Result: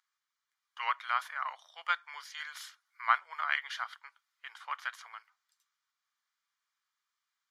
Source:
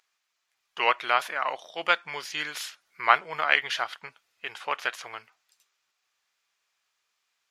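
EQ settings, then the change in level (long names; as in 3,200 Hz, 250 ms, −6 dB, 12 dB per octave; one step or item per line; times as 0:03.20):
four-pole ladder high-pass 920 Hz, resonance 40%
notch filter 2,600 Hz, Q 5.7
−2.5 dB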